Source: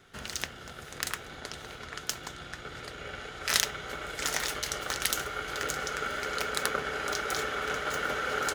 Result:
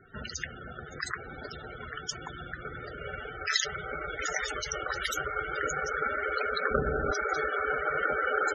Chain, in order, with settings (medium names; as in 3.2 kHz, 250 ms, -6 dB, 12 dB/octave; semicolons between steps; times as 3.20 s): 6.71–7.11 s: tilt EQ -3 dB/octave; loudest bins only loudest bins 32; trim +4 dB